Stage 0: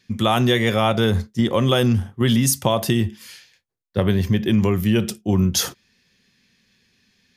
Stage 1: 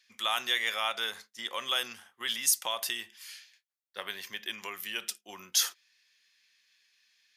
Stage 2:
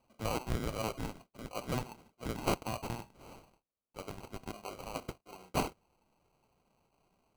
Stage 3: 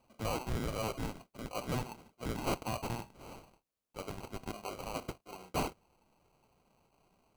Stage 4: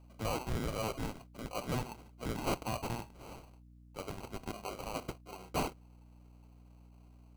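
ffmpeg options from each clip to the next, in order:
-af "highpass=1.4k,volume=-4.5dB"
-af "acrusher=samples=25:mix=1:aa=0.000001,volume=-5dB"
-af "asoftclip=type=tanh:threshold=-30.5dB,volume=3dB"
-af "aeval=exprs='val(0)+0.00158*(sin(2*PI*60*n/s)+sin(2*PI*2*60*n/s)/2+sin(2*PI*3*60*n/s)/3+sin(2*PI*4*60*n/s)/4+sin(2*PI*5*60*n/s)/5)':c=same"

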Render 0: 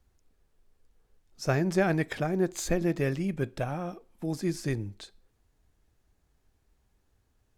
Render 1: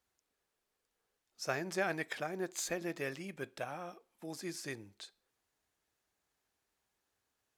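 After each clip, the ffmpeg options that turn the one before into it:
-af "highpass=f=890:p=1,volume=-3dB"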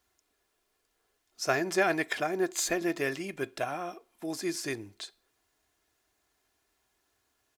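-af "aecho=1:1:2.9:0.41,volume=7.5dB"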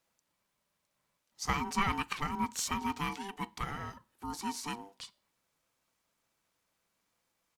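-af "aeval=exprs='val(0)*sin(2*PI*590*n/s)':c=same,volume=-1.5dB"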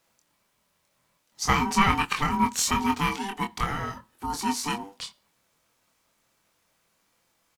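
-filter_complex "[0:a]asplit=2[a][b];[b]adelay=24,volume=-5dB[c];[a][c]amix=inputs=2:normalize=0,volume=8.5dB"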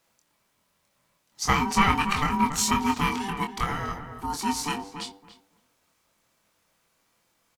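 -filter_complex "[0:a]asplit=2[a][b];[b]adelay=282,lowpass=f=1.4k:p=1,volume=-7.5dB,asplit=2[c][d];[d]adelay=282,lowpass=f=1.4k:p=1,volume=0.18,asplit=2[e][f];[f]adelay=282,lowpass=f=1.4k:p=1,volume=0.18[g];[a][c][e][g]amix=inputs=4:normalize=0"

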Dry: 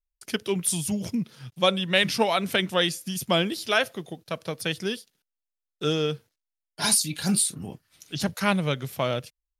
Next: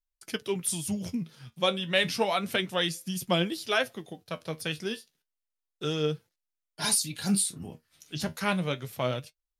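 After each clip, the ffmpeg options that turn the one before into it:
-af "flanger=delay=5.5:depth=7.7:regen=59:speed=0.31:shape=sinusoidal"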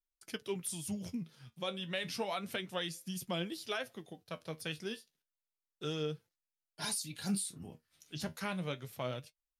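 -af "alimiter=limit=-18.5dB:level=0:latency=1:release=155,volume=-7.5dB"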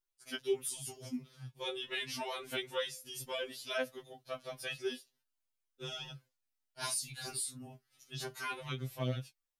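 -af "afftfilt=real='re*2.45*eq(mod(b,6),0)':imag='im*2.45*eq(mod(b,6),0)':win_size=2048:overlap=0.75,volume=3dB"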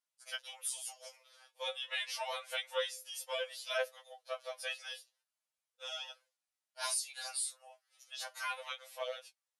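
-af "afftfilt=real='re*between(b*sr/4096,490,12000)':imag='im*between(b*sr/4096,490,12000)':win_size=4096:overlap=0.75,volume=1dB"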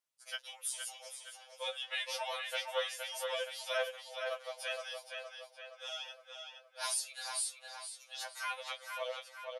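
-filter_complex "[0:a]asplit=2[a][b];[b]adelay=467,lowpass=f=4.8k:p=1,volume=-4.5dB,asplit=2[c][d];[d]adelay=467,lowpass=f=4.8k:p=1,volume=0.55,asplit=2[e][f];[f]adelay=467,lowpass=f=4.8k:p=1,volume=0.55,asplit=2[g][h];[h]adelay=467,lowpass=f=4.8k:p=1,volume=0.55,asplit=2[i][j];[j]adelay=467,lowpass=f=4.8k:p=1,volume=0.55,asplit=2[k][l];[l]adelay=467,lowpass=f=4.8k:p=1,volume=0.55,asplit=2[m][n];[n]adelay=467,lowpass=f=4.8k:p=1,volume=0.55[o];[a][c][e][g][i][k][m][o]amix=inputs=8:normalize=0"

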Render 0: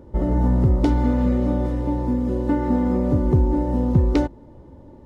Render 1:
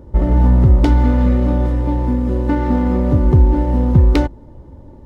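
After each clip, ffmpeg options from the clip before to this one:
-filter_complex "[0:a]asplit=2[a][b];[b]adynamicsmooth=sensitivity=5.5:basefreq=1.2k,volume=1dB[c];[a][c]amix=inputs=2:normalize=0,equalizer=f=350:w=0.33:g=-8,volume=4dB"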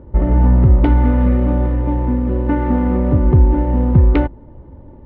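-af "lowpass=f=2.8k:w=0.5412,lowpass=f=2.8k:w=1.3066"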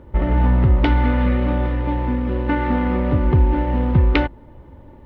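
-af "tiltshelf=f=1.5k:g=-9,volume=4.5dB"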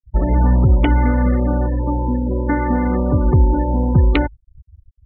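-filter_complex "[0:a]acrossover=split=400[a][b];[b]acompressor=threshold=-21dB:ratio=2[c];[a][c]amix=inputs=2:normalize=0,afftfilt=real='re*gte(hypot(re,im),0.0794)':imag='im*gte(hypot(re,im),0.0794)':win_size=1024:overlap=0.75,volume=2dB"

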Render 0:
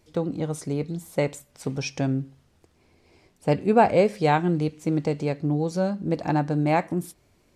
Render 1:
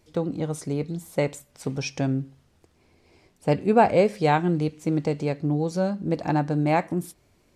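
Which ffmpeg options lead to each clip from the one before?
-af anull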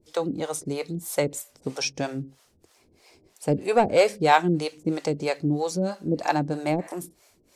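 -filter_complex "[0:a]bass=f=250:g=-8,treble=f=4k:g=8,asoftclip=type=tanh:threshold=-9dB,acrossover=split=450[a][b];[a]aeval=exprs='val(0)*(1-1/2+1/2*cos(2*PI*3.1*n/s))':c=same[c];[b]aeval=exprs='val(0)*(1-1/2-1/2*cos(2*PI*3.1*n/s))':c=same[d];[c][d]amix=inputs=2:normalize=0,volume=7dB"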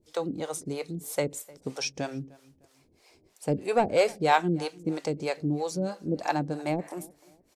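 -filter_complex "[0:a]asplit=2[a][b];[b]adelay=304,lowpass=f=2.5k:p=1,volume=-22.5dB,asplit=2[c][d];[d]adelay=304,lowpass=f=2.5k:p=1,volume=0.35[e];[a][c][e]amix=inputs=3:normalize=0,volume=-4dB"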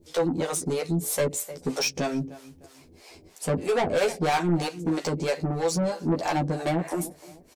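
-filter_complex "[0:a]asplit=2[a][b];[b]acompressor=threshold=-33dB:ratio=6,volume=-2dB[c];[a][c]amix=inputs=2:normalize=0,asoftclip=type=tanh:threshold=-26dB,asplit=2[d][e];[e]adelay=12,volume=-2dB[f];[d][f]amix=inputs=2:normalize=0,volume=3.5dB"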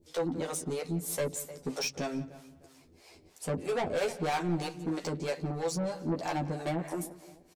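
-filter_complex "[0:a]asplit=2[a][b];[b]adelay=175,lowpass=f=3.7k:p=1,volume=-17.5dB,asplit=2[c][d];[d]adelay=175,lowpass=f=3.7k:p=1,volume=0.4,asplit=2[e][f];[f]adelay=175,lowpass=f=3.7k:p=1,volume=0.4[g];[a][c][e][g]amix=inputs=4:normalize=0,volume=-7dB"

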